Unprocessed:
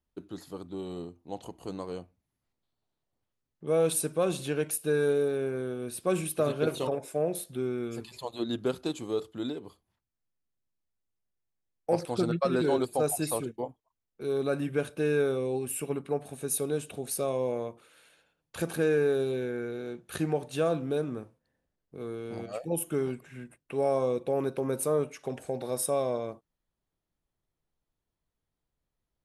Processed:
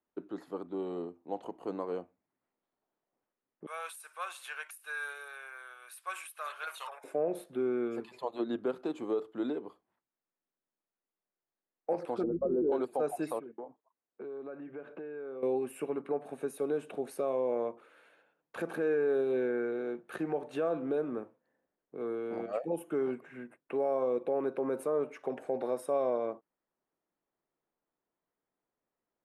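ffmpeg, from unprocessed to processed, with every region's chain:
ffmpeg -i in.wav -filter_complex "[0:a]asettb=1/sr,asplit=3[link_01][link_02][link_03];[link_01]atrim=end=3.664[link_04];[link_02]atrim=start=3.66:end=7.04,asetpts=PTS-STARTPTS,afade=type=in:duration=0.004:curve=qsin,afade=type=out:start_time=3.376:duration=0.004:curve=qsin,highpass=frequency=1100:width=0.5412,highpass=frequency=1100:width=1.3066,aemphasis=mode=production:type=50kf[link_05];[link_03]atrim=start=7.036[link_06];[link_04][link_05]acrossfade=duration=0.004:curve1=hsin:curve2=qsin[link_07];[link_07][link_06]acrossfade=duration=0.004:curve1=qsin:curve2=hsin,asettb=1/sr,asplit=3[link_08][link_09][link_10];[link_08]atrim=end=12.234[link_11];[link_09]atrim=start=12.23:end=12.72,asetpts=PTS-STARTPTS,afade=type=in:duration=0.004:curve=qsin,afade=type=out:start_time=0.486:duration=0.004:curve=qsin,lowpass=frequency=410:width_type=q:width=2.3,aeval=exprs='val(0)+0.0251*(sin(2*PI*50*n/s)+sin(2*PI*2*50*n/s)/2+sin(2*PI*3*50*n/s)/3+sin(2*PI*4*50*n/s)/4+sin(2*PI*5*50*n/s)/5)':channel_layout=same[link_12];[link_10]atrim=start=12.716[link_13];[link_11][link_12]acrossfade=duration=0.004:curve1=hsin:curve2=qsin[link_14];[link_14][link_13]acrossfade=duration=0.004:curve1=qsin:curve2=hsin,asettb=1/sr,asplit=3[link_15][link_16][link_17];[link_15]atrim=end=13.394[link_18];[link_16]atrim=start=13.39:end=15.43,asetpts=PTS-STARTPTS,afade=type=in:duration=0.004:curve=qsin,afade=type=out:start_time=2.036:duration=0.004:curve=qsin,acompressor=threshold=-40dB:ratio=12:attack=3.2:release=140:knee=1:detection=peak,highpass=120,lowpass=2500[link_19];[link_17]atrim=start=15.426[link_20];[link_18][link_19]acrossfade=duration=0.004:curve1=hsin:curve2=qsin[link_21];[link_21][link_20]acrossfade=duration=0.004:curve1=qsin:curve2=hsin,alimiter=limit=-24dB:level=0:latency=1:release=148,acrossover=split=220 2200:gain=0.0631 1 0.112[link_22][link_23][link_24];[link_22][link_23][link_24]amix=inputs=3:normalize=0,volume=3dB" out.wav

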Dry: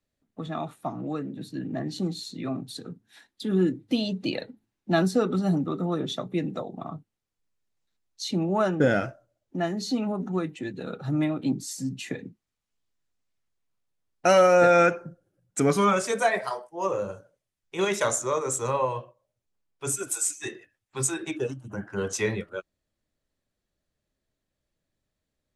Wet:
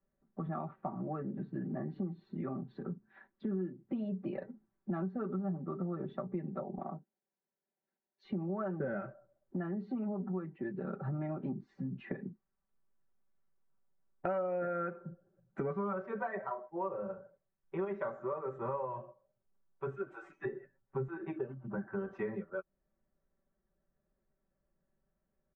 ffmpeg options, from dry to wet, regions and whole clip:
ffmpeg -i in.wav -filter_complex "[0:a]asettb=1/sr,asplit=3[link_01][link_02][link_03];[link_01]atrim=end=6.784[link_04];[link_02]atrim=start=6.78:end=8.25,asetpts=PTS-STARTPTS,afade=type=in:duration=0.004:curve=qsin,afade=type=out:start_time=1.466:duration=0.004:curve=qsin,highpass=260,equalizer=frequency=1200:width_type=o:width=0.37:gain=-11.5[link_05];[link_03]atrim=start=8.246[link_06];[link_04][link_05]acrossfade=duration=0.004:curve1=hsin:curve2=qsin[link_07];[link_07][link_06]acrossfade=duration=0.004:curve1=qsin:curve2=hsin,asettb=1/sr,asplit=3[link_08][link_09][link_10];[link_08]atrim=end=20.454[link_11];[link_09]atrim=start=20.45:end=21.08,asetpts=PTS-STARTPTS,afade=type=in:duration=0.004:curve=qsin,afade=type=out:start_time=0.626:duration=0.004:curve=qsin,tiltshelf=frequency=790:gain=5,aecho=1:1:7.3:0.93,atrim=end_sample=27783[link_12];[link_10]atrim=start=21.076[link_13];[link_11][link_12]acrossfade=duration=0.004:curve1=hsin:curve2=qsin[link_14];[link_14][link_13]acrossfade=duration=0.004:curve1=qsin:curve2=hsin,lowpass=frequency=1600:width=0.5412,lowpass=frequency=1600:width=1.3066,aecho=1:1:5.2:0.87,acompressor=threshold=-34dB:ratio=5,volume=-1.5dB" out.wav

